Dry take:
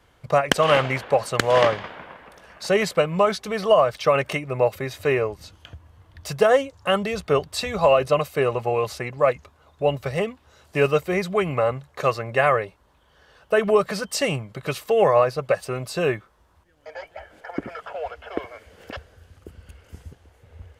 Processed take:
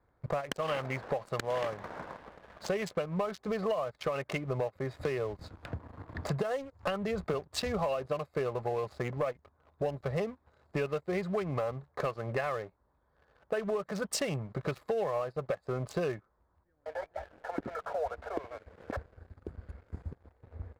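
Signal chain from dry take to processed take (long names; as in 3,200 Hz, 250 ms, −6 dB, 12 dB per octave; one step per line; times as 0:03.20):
adaptive Wiener filter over 15 samples
downward compressor 20 to 1, threshold −28 dBFS, peak gain reduction 17.5 dB
leveller curve on the samples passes 2
0:05.01–0:07.34: multiband upward and downward compressor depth 70%
level −7.5 dB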